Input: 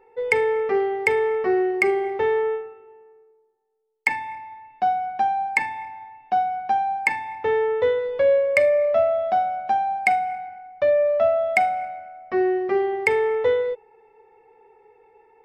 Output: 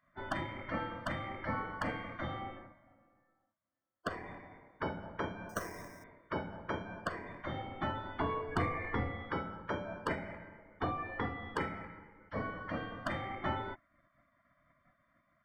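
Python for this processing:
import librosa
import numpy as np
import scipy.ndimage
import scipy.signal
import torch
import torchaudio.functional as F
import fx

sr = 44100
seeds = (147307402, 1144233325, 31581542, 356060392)

y = fx.spec_gate(x, sr, threshold_db=-30, keep='weak')
y = scipy.signal.savgol_filter(y, 41, 4, mode='constant')
y = fx.resample_bad(y, sr, factor=6, down='filtered', up='hold', at=(5.49, 6.04))
y = fx.low_shelf(y, sr, hz=150.0, db=7.5, at=(8.48, 9.17))
y = y * librosa.db_to_amplitude(9.5)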